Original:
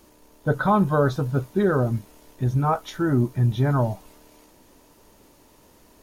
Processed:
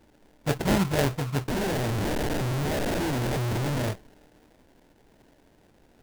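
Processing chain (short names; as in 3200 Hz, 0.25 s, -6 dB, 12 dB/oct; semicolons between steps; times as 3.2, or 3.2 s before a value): 1.48–3.91 infinite clipping; sample-rate reducer 1200 Hz, jitter 20%; gain -4.5 dB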